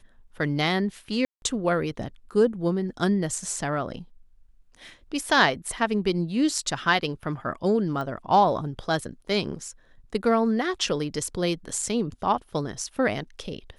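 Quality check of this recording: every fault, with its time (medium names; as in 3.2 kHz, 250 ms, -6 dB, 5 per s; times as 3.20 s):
1.25–1.42 s: dropout 171 ms
8.01 s: pop -21 dBFS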